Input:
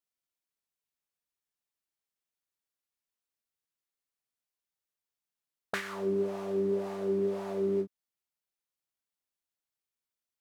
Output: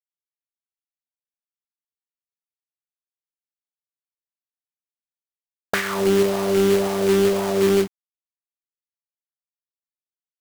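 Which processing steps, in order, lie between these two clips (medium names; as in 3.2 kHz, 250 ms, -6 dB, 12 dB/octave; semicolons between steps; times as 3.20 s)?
de-hum 364.6 Hz, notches 2; in parallel at -1 dB: peak limiter -31 dBFS, peak gain reduction 11.5 dB; on the sum: bass shelf 63 Hz +7.5 dB; companded quantiser 4-bit; trim +8.5 dB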